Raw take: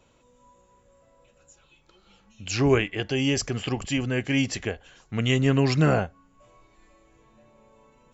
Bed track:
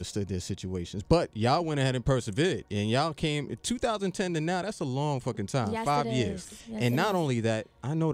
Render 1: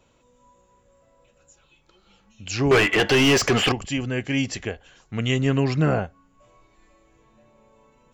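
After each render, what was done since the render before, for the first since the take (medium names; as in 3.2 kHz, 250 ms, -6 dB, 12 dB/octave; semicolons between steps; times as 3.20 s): 2.71–3.72 s: overdrive pedal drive 29 dB, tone 2.8 kHz, clips at -8.5 dBFS; 5.64–6.04 s: treble shelf 3.3 kHz -8 dB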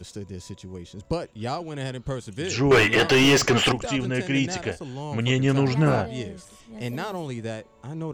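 add bed track -4.5 dB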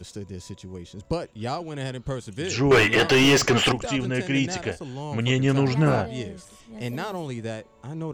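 no audible change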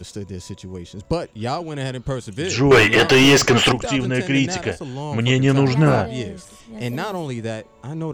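trim +5 dB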